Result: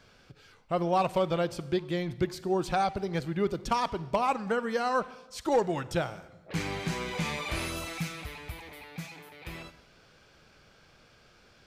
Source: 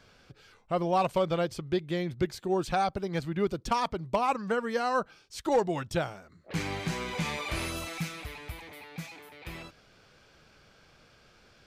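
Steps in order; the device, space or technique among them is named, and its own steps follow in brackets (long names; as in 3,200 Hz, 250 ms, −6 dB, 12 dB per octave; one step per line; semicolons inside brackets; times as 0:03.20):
saturated reverb return (on a send at −14 dB: convolution reverb RT60 1.0 s, pre-delay 33 ms + soft clipping −26 dBFS, distortion −12 dB)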